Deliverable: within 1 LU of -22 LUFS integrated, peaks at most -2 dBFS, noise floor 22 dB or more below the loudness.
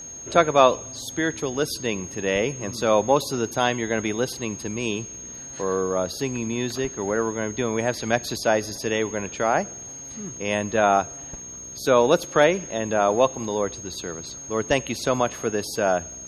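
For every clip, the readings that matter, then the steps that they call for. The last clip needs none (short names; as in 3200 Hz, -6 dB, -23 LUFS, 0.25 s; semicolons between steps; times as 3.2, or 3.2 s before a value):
steady tone 6500 Hz; tone level -36 dBFS; loudness -24.0 LUFS; peak -2.0 dBFS; loudness target -22.0 LUFS
-> notch 6500 Hz, Q 30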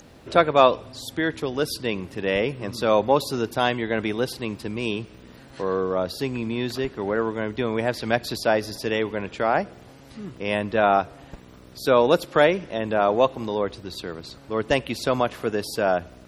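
steady tone none; loudness -24.0 LUFS; peak -2.5 dBFS; loudness target -22.0 LUFS
-> gain +2 dB; limiter -2 dBFS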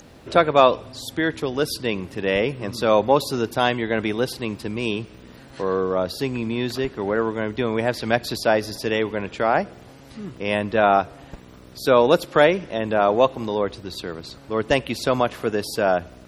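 loudness -22.0 LUFS; peak -2.0 dBFS; noise floor -45 dBFS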